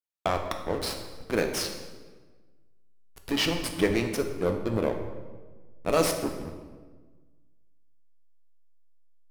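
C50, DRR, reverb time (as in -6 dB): 7.0 dB, 4.0 dB, 1.4 s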